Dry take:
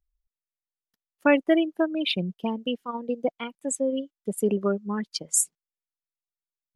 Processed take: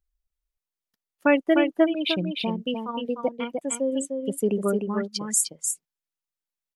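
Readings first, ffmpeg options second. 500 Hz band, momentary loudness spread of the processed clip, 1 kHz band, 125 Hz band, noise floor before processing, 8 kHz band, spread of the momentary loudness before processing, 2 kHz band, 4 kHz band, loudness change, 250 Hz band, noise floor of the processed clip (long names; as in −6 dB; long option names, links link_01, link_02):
+1.5 dB, 9 LU, +1.5 dB, +1.0 dB, below −85 dBFS, +1.0 dB, 9 LU, +1.0 dB, +1.0 dB, +1.0 dB, +1.5 dB, below −85 dBFS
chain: -af "aecho=1:1:302:0.562"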